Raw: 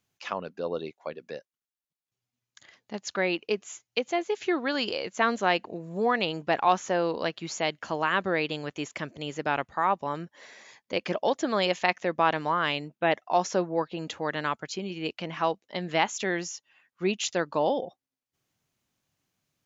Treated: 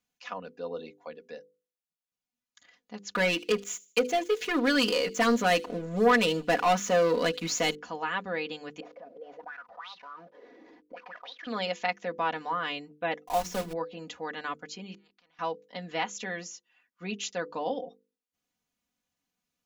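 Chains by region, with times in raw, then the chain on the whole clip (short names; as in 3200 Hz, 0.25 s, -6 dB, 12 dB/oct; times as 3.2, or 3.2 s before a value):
3.13–7.75 bell 840 Hz -8.5 dB 0.34 oct + sample leveller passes 3 + thin delay 77 ms, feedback 34%, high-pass 3500 Hz, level -19 dB
8.8–11.47 CVSD 32 kbps + auto-wah 280–3900 Hz, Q 10, up, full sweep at -21.5 dBFS + fast leveller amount 70%
13.24–13.75 block floating point 3-bit + low shelf 140 Hz +11.5 dB + notches 60/120/180/240/300/360/420 Hz
14.94–15.39 tone controls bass -5 dB, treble -9 dB + flipped gate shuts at -38 dBFS, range -34 dB + spectral compressor 4:1
whole clip: notches 50/100/150/200/250/300/350/400/450/500 Hz; comb 4.1 ms, depth 81%; gain -7.5 dB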